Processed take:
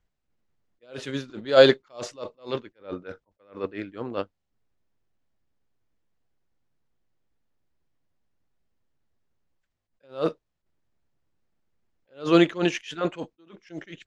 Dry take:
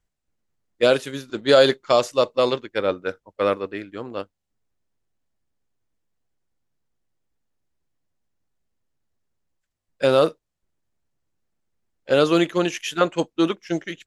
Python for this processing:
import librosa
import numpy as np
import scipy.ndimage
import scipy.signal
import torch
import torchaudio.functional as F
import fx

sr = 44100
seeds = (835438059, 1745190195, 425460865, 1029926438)

y = fx.air_absorb(x, sr, metres=97.0)
y = fx.attack_slew(y, sr, db_per_s=200.0)
y = y * 10.0 ** (2.0 / 20.0)